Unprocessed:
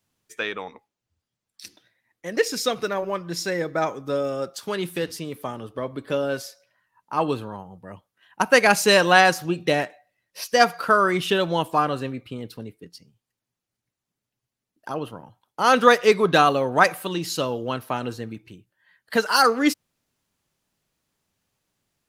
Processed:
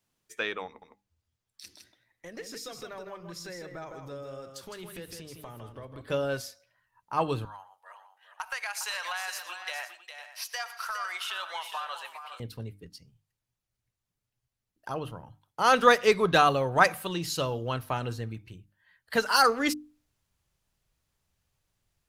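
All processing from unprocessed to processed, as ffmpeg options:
-filter_complex "[0:a]asettb=1/sr,asplit=3[s0][s1][s2];[s0]atrim=end=0.664[s3];[s1]atrim=start=0.66:end=6.01,asetpts=PTS-STARTPTS,afade=t=in:d=0.004:c=qsin,afade=t=out:st=5.346:d=0.004:c=qsin,acompressor=threshold=0.0126:ratio=3:attack=3.2:release=140:knee=1:detection=peak,aecho=1:1:159:0.501,atrim=end_sample=235935[s4];[s2]atrim=start=6.006[s5];[s3][s4]acrossfade=d=0.004:c1=hsin:c2=qsin[s6];[s6][s5]acrossfade=d=0.004:c1=qsin:c2=hsin,asettb=1/sr,asplit=3[s7][s8][s9];[s7]atrim=end=7.454[s10];[s8]atrim=start=7.45:end=12.4,asetpts=PTS-STARTPTS,afade=t=in:d=0.004:c=qsin,afade=t=out:st=4.946:d=0.004:c=qsin,highpass=f=860:w=0.5412,highpass=f=860:w=1.3066,acompressor=threshold=0.0447:ratio=8:attack=3.2:release=140:knee=1:detection=peak,aecho=1:1:117|409|505:0.158|0.355|0.188,atrim=end_sample=218295[s11];[s9]atrim=start=12.396[s12];[s10][s11]acrossfade=d=0.004:c1=hsin:c2=qsin[s13];[s13][s12]acrossfade=d=0.004:c1=qsin:c2=hsin,bandreject=f=50:t=h:w=6,bandreject=f=100:t=h:w=6,bandreject=f=150:t=h:w=6,bandreject=f=200:t=h:w=6,bandreject=f=250:t=h:w=6,bandreject=f=300:t=h:w=6,asubboost=boost=5.5:cutoff=96,volume=0.668"

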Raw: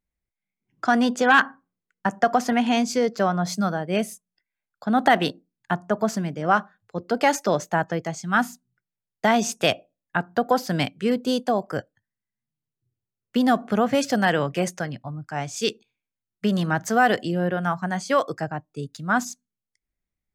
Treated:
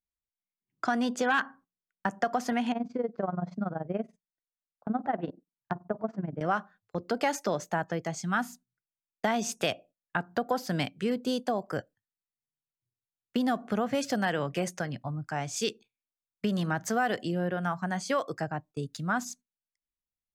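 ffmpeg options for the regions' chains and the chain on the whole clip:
-filter_complex "[0:a]asettb=1/sr,asplit=3[s0][s1][s2];[s0]atrim=end=2.724[s3];[s1]atrim=start=2.72:end=6.41,asetpts=PTS-STARTPTS,afade=t=in:d=0.004:c=qsin,afade=t=out:st=3.686:d=0.004:c=qsin,tremolo=f=21:d=0.857,lowpass=1100[s4];[s2]atrim=start=6.406[s5];[s3][s4]acrossfade=d=0.004:c1=hsin:c2=qsin[s6];[s6][s5]acrossfade=d=0.004:c1=qsin:c2=hsin,agate=range=0.178:threshold=0.00631:ratio=16:detection=peak,acompressor=threshold=0.0282:ratio=2"

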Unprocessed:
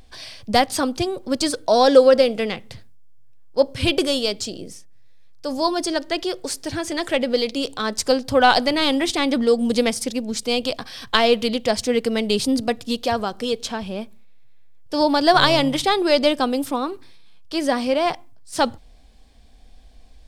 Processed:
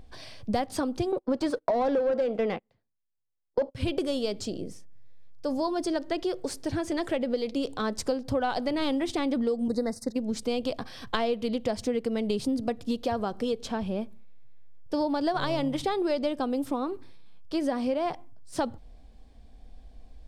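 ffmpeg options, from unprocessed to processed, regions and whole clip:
-filter_complex "[0:a]asettb=1/sr,asplit=3[s0][s1][s2];[s0]atrim=end=1.124[s3];[s1]atrim=start=1.12:end=3.75,asetpts=PTS-STARTPTS,afade=t=in:d=0.004:c=qsin,afade=t=out:st=2.626:d=0.004:c=qsin,agate=range=0.0224:threshold=0.0251:ratio=16:release=100:detection=peak,asplit=2[s4][s5];[s5]highpass=f=720:p=1,volume=11.2,asoftclip=type=tanh:threshold=0.891[s6];[s4][s6]amix=inputs=2:normalize=0,lowpass=f=1200:p=1,volume=0.501[s7];[s2]atrim=start=3.746[s8];[s3][s7]acrossfade=d=0.004:c1=hsin:c2=qsin[s9];[s9][s8]acrossfade=d=0.004:c1=qsin:c2=hsin,asettb=1/sr,asplit=3[s10][s11][s12];[s10]atrim=end=9.684[s13];[s11]atrim=start=9.68:end=10.16,asetpts=PTS-STARTPTS,afade=t=in:d=0.004:c=qsin,afade=t=out:st=0.476:d=0.004:c=qsin,agate=range=0.0224:threshold=0.0631:ratio=3:release=100:detection=peak,asuperstop=centerf=2800:order=20:qfactor=1.7[s14];[s12]atrim=start=10.156[s15];[s13][s14]acrossfade=d=0.004:c1=hsin:c2=qsin[s16];[s16][s15]acrossfade=d=0.004:c1=qsin:c2=hsin,tiltshelf=f=1300:g=5.5,acompressor=threshold=0.112:ratio=6,volume=0.531"

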